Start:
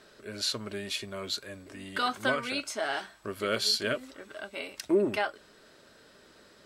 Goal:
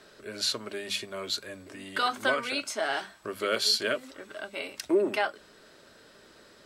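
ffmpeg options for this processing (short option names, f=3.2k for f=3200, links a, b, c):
-filter_complex "[0:a]bandreject=f=50:t=h:w=6,bandreject=f=100:t=h:w=6,bandreject=f=150:t=h:w=6,bandreject=f=200:t=h:w=6,bandreject=f=250:t=h:w=6,acrossover=split=250[a][b];[a]acompressor=threshold=-52dB:ratio=6[c];[c][b]amix=inputs=2:normalize=0,volume=2dB"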